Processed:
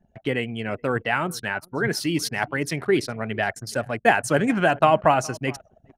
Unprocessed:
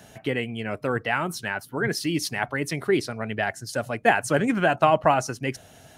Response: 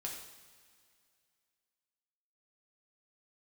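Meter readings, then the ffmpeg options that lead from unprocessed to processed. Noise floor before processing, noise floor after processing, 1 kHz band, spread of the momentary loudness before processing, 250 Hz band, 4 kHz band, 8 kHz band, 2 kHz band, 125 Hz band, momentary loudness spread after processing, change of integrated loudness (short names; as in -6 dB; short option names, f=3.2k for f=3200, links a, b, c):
-51 dBFS, -63 dBFS, +1.5 dB, 10 LU, +1.5 dB, +1.5 dB, +1.5 dB, +1.5 dB, +1.5 dB, 10 LU, +1.5 dB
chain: -af "aecho=1:1:416|832:0.0708|0.0142,anlmdn=0.398,volume=1.5dB"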